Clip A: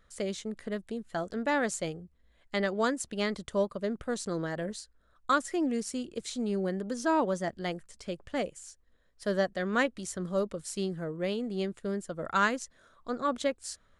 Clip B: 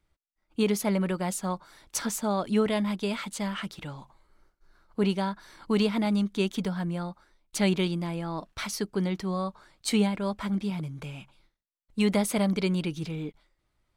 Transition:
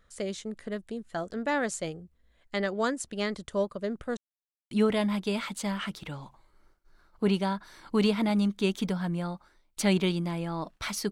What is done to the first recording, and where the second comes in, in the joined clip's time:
clip A
4.17–4.71 mute
4.71 switch to clip B from 2.47 s

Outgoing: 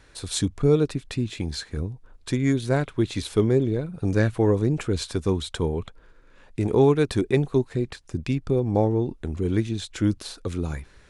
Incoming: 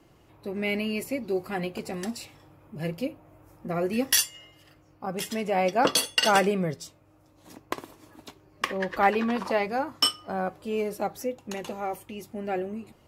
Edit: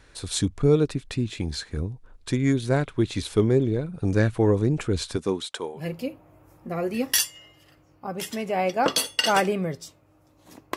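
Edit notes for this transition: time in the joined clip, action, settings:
outgoing
5.16–5.83 HPF 160 Hz -> 820 Hz
5.77 switch to incoming from 2.76 s, crossfade 0.12 s

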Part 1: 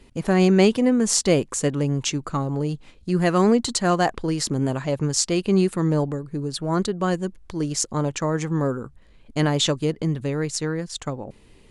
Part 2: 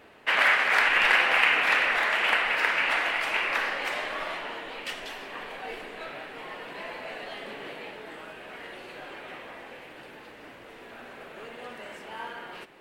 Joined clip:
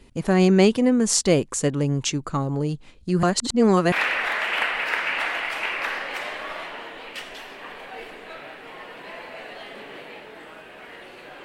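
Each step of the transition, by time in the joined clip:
part 1
3.23–3.92 reverse
3.92 switch to part 2 from 1.63 s

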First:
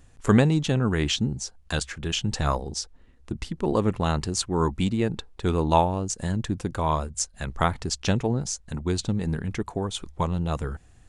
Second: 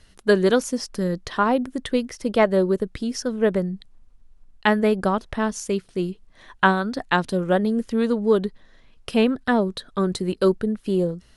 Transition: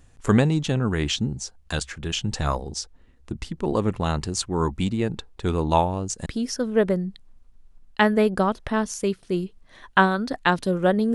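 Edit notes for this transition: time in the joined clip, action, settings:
first
6.26 switch to second from 2.92 s

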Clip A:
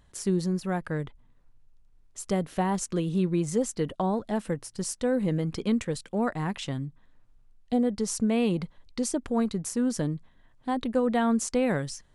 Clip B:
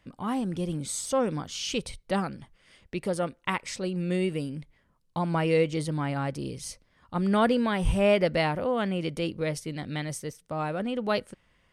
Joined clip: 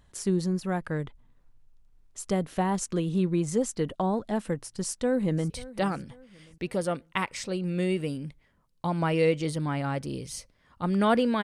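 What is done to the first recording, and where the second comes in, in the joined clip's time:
clip A
4.83–5.5 echo throw 0.54 s, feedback 35%, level -18 dB
5.5 switch to clip B from 1.82 s

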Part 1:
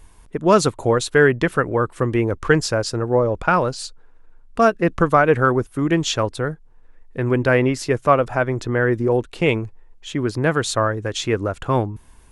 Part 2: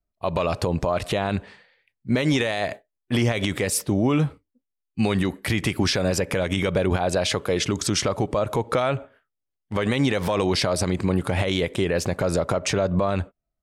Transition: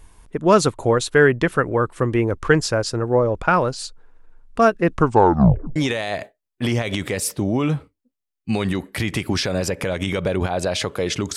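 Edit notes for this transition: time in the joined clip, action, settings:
part 1
4.97 tape stop 0.79 s
5.76 switch to part 2 from 2.26 s

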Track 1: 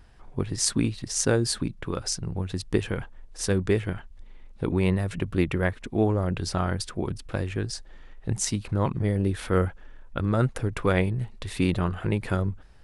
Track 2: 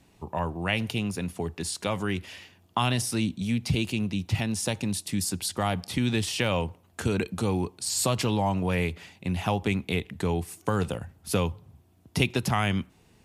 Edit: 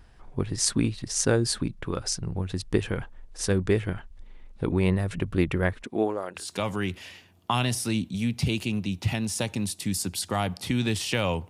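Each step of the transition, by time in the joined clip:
track 1
5.82–6.52 HPF 160 Hz -> 1100 Hz
6.43 switch to track 2 from 1.7 s, crossfade 0.18 s

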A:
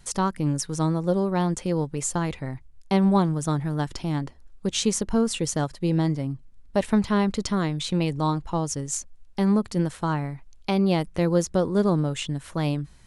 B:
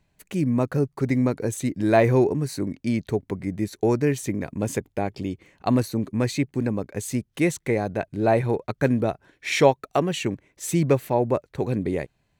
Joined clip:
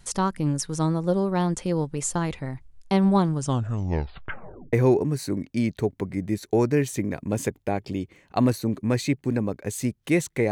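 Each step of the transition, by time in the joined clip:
A
3.32 tape stop 1.41 s
4.73 switch to B from 2.03 s

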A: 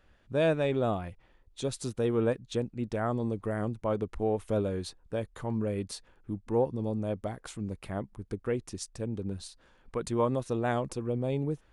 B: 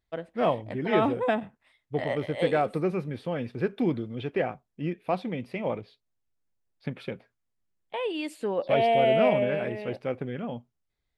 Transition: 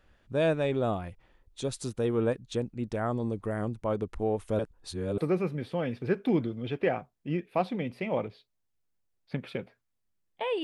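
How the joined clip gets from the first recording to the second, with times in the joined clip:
A
4.59–5.18 reverse
5.18 switch to B from 2.71 s

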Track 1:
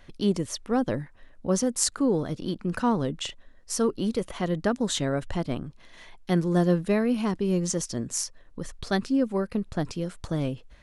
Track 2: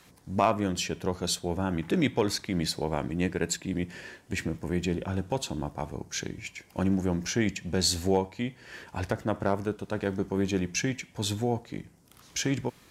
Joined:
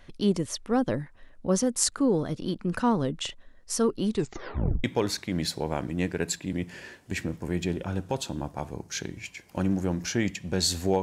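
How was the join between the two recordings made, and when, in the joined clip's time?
track 1
4.07 tape stop 0.77 s
4.84 switch to track 2 from 2.05 s

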